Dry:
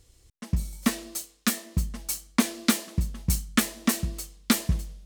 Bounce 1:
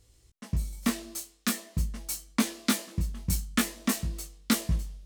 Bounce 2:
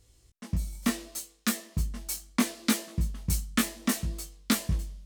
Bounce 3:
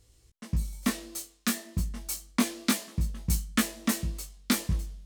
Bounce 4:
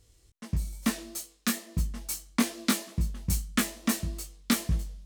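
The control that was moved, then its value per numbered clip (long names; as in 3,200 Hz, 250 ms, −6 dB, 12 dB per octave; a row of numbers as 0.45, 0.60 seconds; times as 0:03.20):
chorus effect, speed: 0.45, 0.7, 0.28, 2.3 Hertz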